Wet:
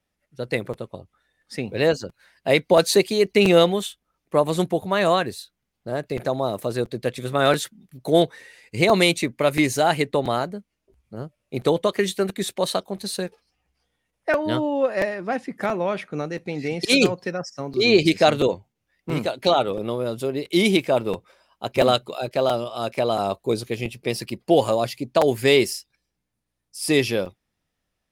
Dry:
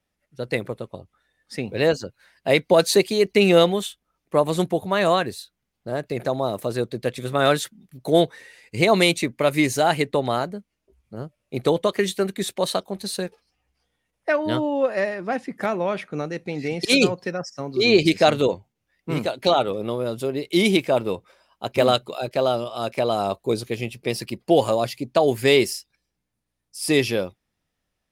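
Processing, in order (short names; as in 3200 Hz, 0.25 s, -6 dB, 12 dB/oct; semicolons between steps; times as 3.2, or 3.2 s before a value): crackling interface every 0.68 s, samples 256, repeat, from 0.73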